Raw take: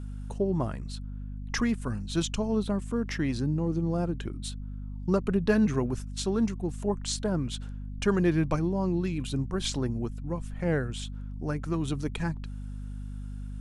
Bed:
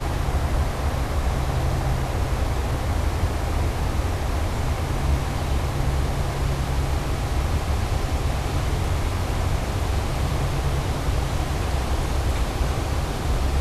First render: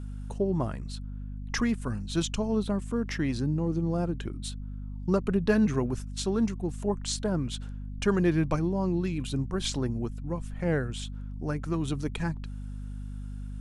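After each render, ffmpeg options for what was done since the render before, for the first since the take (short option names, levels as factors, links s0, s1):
-af anull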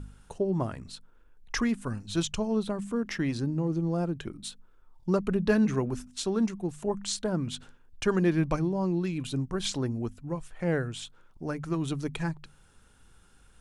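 -af "bandreject=f=50:t=h:w=4,bandreject=f=100:t=h:w=4,bandreject=f=150:t=h:w=4,bandreject=f=200:t=h:w=4,bandreject=f=250:t=h:w=4"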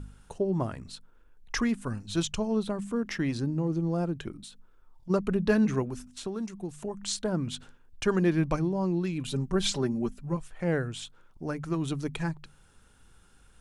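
-filter_complex "[0:a]asplit=3[s0][s1][s2];[s0]afade=t=out:st=4.41:d=0.02[s3];[s1]acompressor=threshold=0.00794:ratio=6:attack=3.2:release=140:knee=1:detection=peak,afade=t=in:st=4.41:d=0.02,afade=t=out:st=5.09:d=0.02[s4];[s2]afade=t=in:st=5.09:d=0.02[s5];[s3][s4][s5]amix=inputs=3:normalize=0,asettb=1/sr,asplit=3[s6][s7][s8];[s6]atrim=end=5.824[s9];[s7]atrim=start=5.82:end=7.03,asetpts=PTS-STARTPTS,afade=t=in:d=0.004:c=qsin,afade=t=out:st=1.206:d=0.004:c=qsin,acrossover=split=2900|6800[s10][s11][s12];[s10]acompressor=threshold=0.0251:ratio=4[s13];[s11]acompressor=threshold=0.00251:ratio=4[s14];[s12]acompressor=threshold=0.00447:ratio=4[s15];[s13][s14][s15]amix=inputs=3:normalize=0[s16];[s8]atrim=start=7.026[s17];[s9][s16]acrossfade=d=0.004:c1=hsin:c2=qsin[s18];[s18][s17]acrossfade=d=0.004:c1=qsin:c2=hsin,asettb=1/sr,asplit=3[s19][s20][s21];[s19]atrim=end=9.274[s22];[s20]atrim=start=9.27:end=10.37,asetpts=PTS-STARTPTS,afade=t=in:d=0.004:c=qsin,afade=t=out:st=1.096:d=0.004:c=qsin,aecho=1:1:5.1:0.91,atrim=end_sample=48510[s23];[s21]atrim=start=10.366[s24];[s22][s23]acrossfade=d=0.004:c1=hsin:c2=qsin[s25];[s25][s24]acrossfade=d=0.004:c1=qsin:c2=hsin"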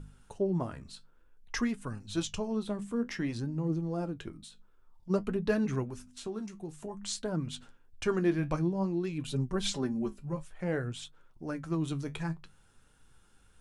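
-af "flanger=delay=6.1:depth=8.8:regen=55:speed=0.54:shape=triangular"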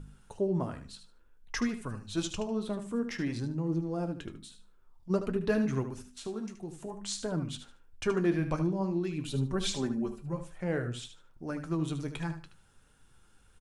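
-af "aecho=1:1:75|150|225:0.316|0.0664|0.0139"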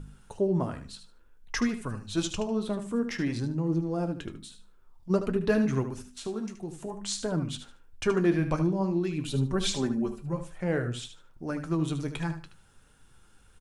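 -af "volume=1.5"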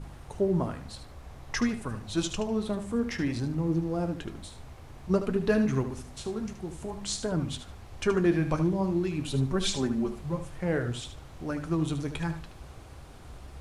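-filter_complex "[1:a]volume=0.0708[s0];[0:a][s0]amix=inputs=2:normalize=0"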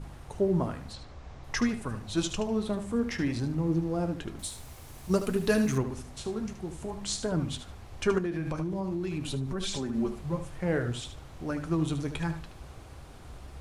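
-filter_complex "[0:a]asettb=1/sr,asplit=3[s0][s1][s2];[s0]atrim=end=0.934[s3];[s1]atrim=start=0.93:end=1.44,asetpts=PTS-STARTPTS,afade=t=in:d=0.004:c=qsin,afade=t=out:st=0.506:d=0.004:c=qsin,lowpass=f=6900:w=0.5412,lowpass=f=6900:w=1.3066[s4];[s2]atrim=start=1.436[s5];[s3][s4]acrossfade=d=0.004:c1=hsin:c2=qsin[s6];[s6][s5]acrossfade=d=0.004:c1=qsin:c2=hsin,asettb=1/sr,asplit=3[s7][s8][s9];[s7]atrim=end=4.394[s10];[s8]atrim=start=4.39:end=5.78,asetpts=PTS-STARTPTS,afade=t=in:d=0.004:c=qsin,afade=t=out:st=1.386:d=0.004:c=qsin,aemphasis=mode=production:type=75fm[s11];[s9]atrim=start=5.776[s12];[s10][s11]acrossfade=d=0.004:c1=hsin:c2=qsin[s13];[s13][s12]acrossfade=d=0.004:c1=qsin:c2=hsin,asettb=1/sr,asplit=3[s14][s15][s16];[s14]atrim=end=8.184[s17];[s15]atrim=start=8.18:end=9.95,asetpts=PTS-STARTPTS,afade=t=in:d=0.004:c=qsin,afade=t=out:st=1.766:d=0.004:c=qsin,acompressor=threshold=0.0398:ratio=6:attack=3.2:release=140:knee=1:detection=peak[s18];[s16]atrim=start=9.946[s19];[s17][s18]acrossfade=d=0.004:c1=hsin:c2=qsin[s20];[s20][s19]acrossfade=d=0.004:c1=qsin:c2=hsin"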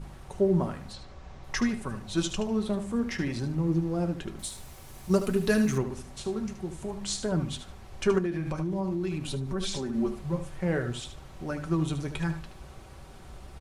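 -af "aecho=1:1:5.3:0.35"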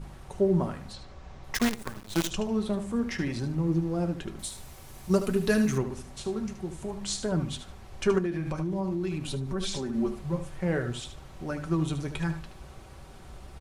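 -filter_complex "[0:a]asplit=3[s0][s1][s2];[s0]afade=t=out:st=1.54:d=0.02[s3];[s1]acrusher=bits=5:dc=4:mix=0:aa=0.000001,afade=t=in:st=1.54:d=0.02,afade=t=out:st=2.29:d=0.02[s4];[s2]afade=t=in:st=2.29:d=0.02[s5];[s3][s4][s5]amix=inputs=3:normalize=0"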